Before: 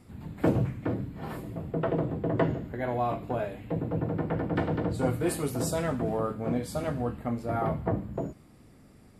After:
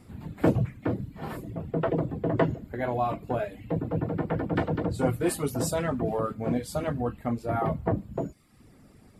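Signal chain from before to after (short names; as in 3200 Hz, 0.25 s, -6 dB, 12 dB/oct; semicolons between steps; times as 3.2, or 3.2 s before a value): reverb removal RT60 0.66 s; gain +2.5 dB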